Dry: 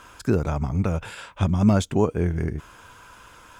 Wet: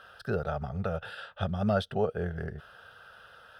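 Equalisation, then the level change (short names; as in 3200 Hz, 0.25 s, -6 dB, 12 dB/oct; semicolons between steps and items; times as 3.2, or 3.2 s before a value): HPF 280 Hz 6 dB/oct; LPF 3200 Hz 6 dB/oct; fixed phaser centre 1500 Hz, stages 8; 0.0 dB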